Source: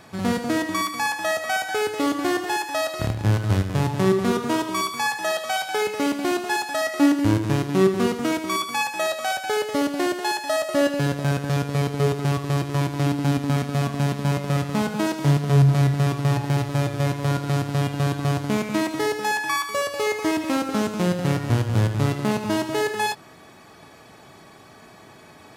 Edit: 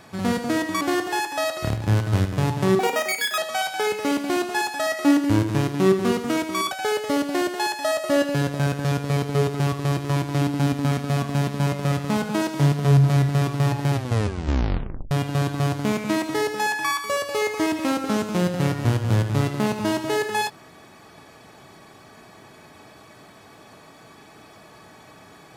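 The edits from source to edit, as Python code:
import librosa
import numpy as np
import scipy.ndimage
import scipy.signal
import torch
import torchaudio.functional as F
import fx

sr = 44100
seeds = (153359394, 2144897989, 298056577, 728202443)

y = fx.edit(x, sr, fx.cut(start_s=0.81, length_s=1.37),
    fx.speed_span(start_s=4.16, length_s=1.17, speed=1.98),
    fx.cut(start_s=8.66, length_s=0.7),
    fx.tape_stop(start_s=16.57, length_s=1.19), tone=tone)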